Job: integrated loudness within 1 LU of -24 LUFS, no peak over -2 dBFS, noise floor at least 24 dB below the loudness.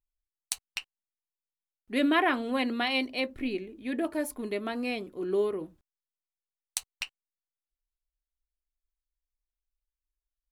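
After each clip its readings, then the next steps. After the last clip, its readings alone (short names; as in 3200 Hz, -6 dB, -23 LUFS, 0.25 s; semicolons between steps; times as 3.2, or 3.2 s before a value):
loudness -31.0 LUFS; peak -8.0 dBFS; loudness target -24.0 LUFS
-> gain +7 dB; limiter -2 dBFS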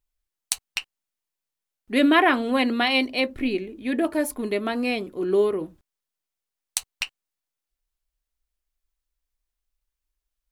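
loudness -24.0 LUFS; peak -2.0 dBFS; noise floor -87 dBFS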